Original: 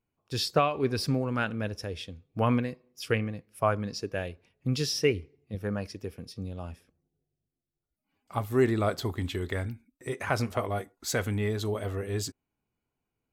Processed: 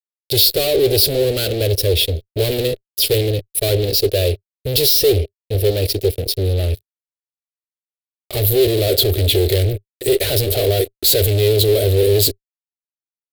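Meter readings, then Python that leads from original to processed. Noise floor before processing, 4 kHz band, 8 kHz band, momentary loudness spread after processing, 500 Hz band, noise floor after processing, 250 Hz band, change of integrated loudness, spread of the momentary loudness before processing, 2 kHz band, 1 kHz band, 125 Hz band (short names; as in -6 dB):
under -85 dBFS, +19.5 dB, +17.5 dB, 7 LU, +15.0 dB, under -85 dBFS, +6.5 dB, +14.5 dB, 13 LU, +5.0 dB, -1.5 dB, +13.5 dB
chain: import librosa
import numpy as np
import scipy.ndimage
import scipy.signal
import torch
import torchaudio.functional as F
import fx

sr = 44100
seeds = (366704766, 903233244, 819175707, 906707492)

y = fx.fuzz(x, sr, gain_db=43.0, gate_db=-51.0)
y = fx.curve_eq(y, sr, hz=(100.0, 210.0, 400.0, 610.0, 1000.0, 4100.0, 6100.0, 13000.0), db=(0, -21, 5, -1, -27, 6, -9, 10))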